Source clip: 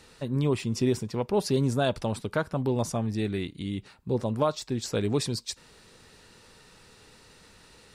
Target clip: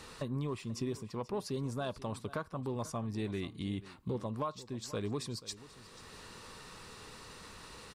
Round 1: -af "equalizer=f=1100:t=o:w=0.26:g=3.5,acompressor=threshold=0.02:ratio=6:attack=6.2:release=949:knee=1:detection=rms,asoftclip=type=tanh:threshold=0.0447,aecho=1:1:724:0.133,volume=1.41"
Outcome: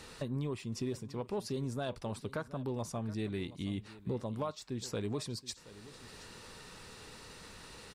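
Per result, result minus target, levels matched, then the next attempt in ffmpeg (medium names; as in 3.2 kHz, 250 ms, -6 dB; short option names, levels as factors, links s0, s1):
echo 239 ms late; 1 kHz band -2.5 dB
-af "equalizer=f=1100:t=o:w=0.26:g=3.5,acompressor=threshold=0.02:ratio=6:attack=6.2:release=949:knee=1:detection=rms,asoftclip=type=tanh:threshold=0.0447,aecho=1:1:485:0.133,volume=1.41"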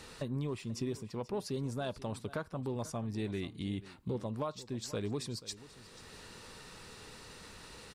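1 kHz band -2.5 dB
-af "equalizer=f=1100:t=o:w=0.26:g=10.5,acompressor=threshold=0.02:ratio=6:attack=6.2:release=949:knee=1:detection=rms,asoftclip=type=tanh:threshold=0.0447,aecho=1:1:485:0.133,volume=1.41"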